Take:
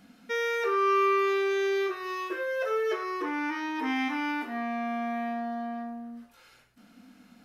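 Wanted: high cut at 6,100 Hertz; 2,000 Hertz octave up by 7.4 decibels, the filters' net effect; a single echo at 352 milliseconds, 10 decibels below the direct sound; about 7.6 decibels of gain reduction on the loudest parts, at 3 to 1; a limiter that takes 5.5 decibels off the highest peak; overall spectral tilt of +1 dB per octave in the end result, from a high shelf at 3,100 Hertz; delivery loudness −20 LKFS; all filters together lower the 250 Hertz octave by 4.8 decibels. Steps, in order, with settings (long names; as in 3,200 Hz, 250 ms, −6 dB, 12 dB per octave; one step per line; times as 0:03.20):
low-pass filter 6,100 Hz
parametric band 250 Hz −6.5 dB
parametric band 2,000 Hz +8 dB
high-shelf EQ 3,100 Hz +3.5 dB
downward compressor 3 to 1, threshold −29 dBFS
brickwall limiter −26 dBFS
single-tap delay 352 ms −10 dB
level +12.5 dB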